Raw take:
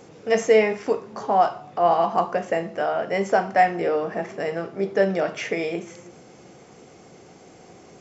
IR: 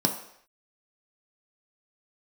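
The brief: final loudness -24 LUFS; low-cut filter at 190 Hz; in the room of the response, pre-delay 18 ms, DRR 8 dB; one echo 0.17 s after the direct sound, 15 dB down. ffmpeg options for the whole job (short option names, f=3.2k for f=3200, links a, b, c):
-filter_complex "[0:a]highpass=190,aecho=1:1:170:0.178,asplit=2[a][b];[1:a]atrim=start_sample=2205,adelay=18[c];[b][c]afir=irnorm=-1:irlink=0,volume=-18.5dB[d];[a][d]amix=inputs=2:normalize=0,volume=-2.5dB"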